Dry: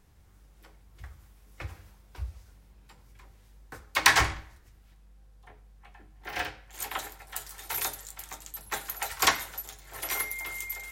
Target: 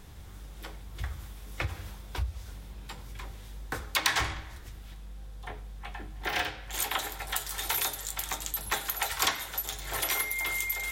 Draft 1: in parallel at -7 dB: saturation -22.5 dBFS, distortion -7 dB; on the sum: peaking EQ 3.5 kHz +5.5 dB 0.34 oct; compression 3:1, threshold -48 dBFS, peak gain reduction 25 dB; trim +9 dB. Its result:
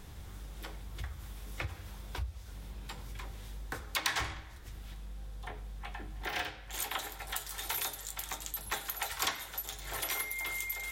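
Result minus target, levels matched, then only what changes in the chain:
compression: peak gain reduction +5.5 dB
change: compression 3:1, threshold -39.5 dBFS, peak gain reduction 19.5 dB

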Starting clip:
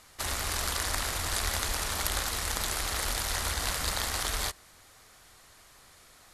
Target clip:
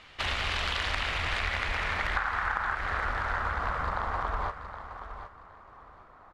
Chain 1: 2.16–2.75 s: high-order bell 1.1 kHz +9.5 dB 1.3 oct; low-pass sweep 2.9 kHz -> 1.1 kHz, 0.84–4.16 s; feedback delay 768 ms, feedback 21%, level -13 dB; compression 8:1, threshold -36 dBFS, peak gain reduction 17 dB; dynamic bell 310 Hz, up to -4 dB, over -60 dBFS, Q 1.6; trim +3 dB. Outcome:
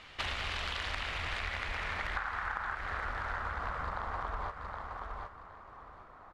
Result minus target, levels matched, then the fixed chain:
compression: peak gain reduction +6.5 dB
2.16–2.75 s: high-order bell 1.1 kHz +9.5 dB 1.3 oct; low-pass sweep 2.9 kHz -> 1.1 kHz, 0.84–4.16 s; feedback delay 768 ms, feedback 21%, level -13 dB; compression 8:1, threshold -28.5 dBFS, peak gain reduction 10.5 dB; dynamic bell 310 Hz, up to -4 dB, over -60 dBFS, Q 1.6; trim +3 dB

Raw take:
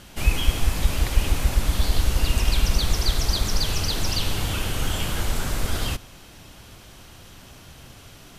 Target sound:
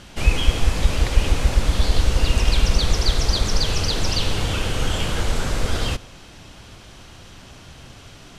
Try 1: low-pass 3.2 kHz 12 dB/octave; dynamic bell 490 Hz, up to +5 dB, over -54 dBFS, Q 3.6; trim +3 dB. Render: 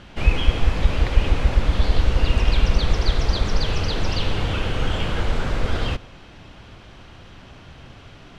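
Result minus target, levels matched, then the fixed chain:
8 kHz band -10.5 dB
low-pass 7.7 kHz 12 dB/octave; dynamic bell 490 Hz, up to +5 dB, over -54 dBFS, Q 3.6; trim +3 dB

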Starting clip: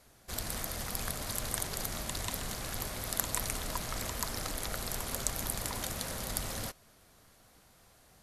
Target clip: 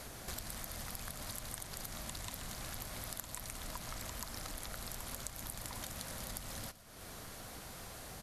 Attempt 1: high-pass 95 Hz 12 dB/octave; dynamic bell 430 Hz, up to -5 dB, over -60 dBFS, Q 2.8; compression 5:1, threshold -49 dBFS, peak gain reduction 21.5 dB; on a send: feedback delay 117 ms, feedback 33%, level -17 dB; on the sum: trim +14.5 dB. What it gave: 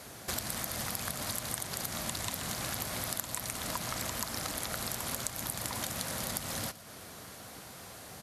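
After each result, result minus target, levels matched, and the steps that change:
compression: peak gain reduction -8 dB; 125 Hz band -3.0 dB
change: compression 5:1, threshold -59 dBFS, peak gain reduction 29.5 dB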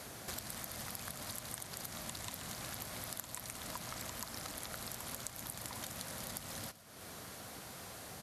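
125 Hz band -2.5 dB
remove: high-pass 95 Hz 12 dB/octave

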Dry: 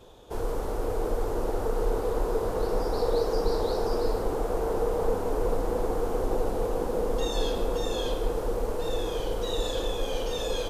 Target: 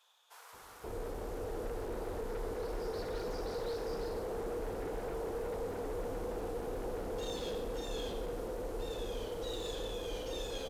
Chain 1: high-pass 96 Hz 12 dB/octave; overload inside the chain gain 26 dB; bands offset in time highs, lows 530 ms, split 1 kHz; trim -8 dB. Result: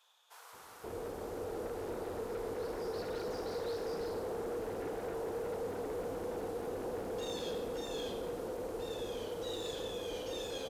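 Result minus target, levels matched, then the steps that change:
125 Hz band -4.0 dB
change: high-pass 35 Hz 12 dB/octave

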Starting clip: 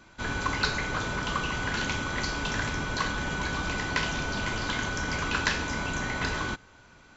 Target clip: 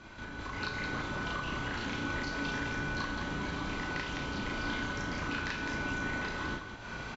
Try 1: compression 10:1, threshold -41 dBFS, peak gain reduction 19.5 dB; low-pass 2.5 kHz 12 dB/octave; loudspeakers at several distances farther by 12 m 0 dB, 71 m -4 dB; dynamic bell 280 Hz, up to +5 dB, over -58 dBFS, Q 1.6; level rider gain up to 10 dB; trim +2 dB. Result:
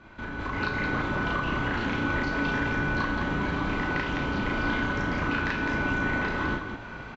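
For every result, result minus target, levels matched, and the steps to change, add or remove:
compression: peak gain reduction -8 dB; 4 kHz band -5.5 dB
change: compression 10:1, threshold -50 dBFS, peak gain reduction 27.5 dB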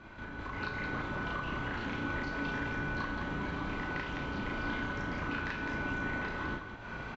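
4 kHz band -5.5 dB
change: low-pass 5.1 kHz 12 dB/octave

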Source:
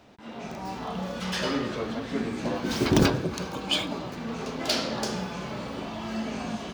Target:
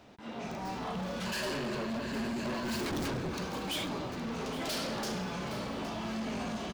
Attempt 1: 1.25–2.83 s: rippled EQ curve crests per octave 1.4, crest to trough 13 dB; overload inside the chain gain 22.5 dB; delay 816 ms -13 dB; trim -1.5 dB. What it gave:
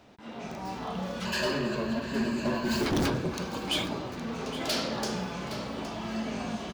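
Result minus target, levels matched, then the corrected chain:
overload inside the chain: distortion -6 dB
1.25–2.83 s: rippled EQ curve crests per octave 1.4, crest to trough 13 dB; overload inside the chain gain 31.5 dB; delay 816 ms -13 dB; trim -1.5 dB

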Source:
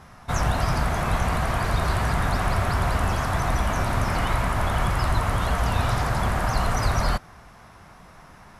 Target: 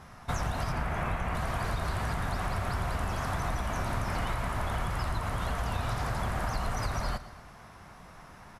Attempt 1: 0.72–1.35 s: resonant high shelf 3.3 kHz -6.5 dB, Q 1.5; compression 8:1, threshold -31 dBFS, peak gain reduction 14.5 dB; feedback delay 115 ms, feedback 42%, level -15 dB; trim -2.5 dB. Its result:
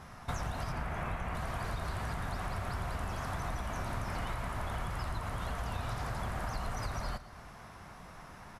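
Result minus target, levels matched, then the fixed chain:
compression: peak gain reduction +5 dB
0.72–1.35 s: resonant high shelf 3.3 kHz -6.5 dB, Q 1.5; compression 8:1, threshold -25 dBFS, peak gain reduction 9 dB; feedback delay 115 ms, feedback 42%, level -15 dB; trim -2.5 dB

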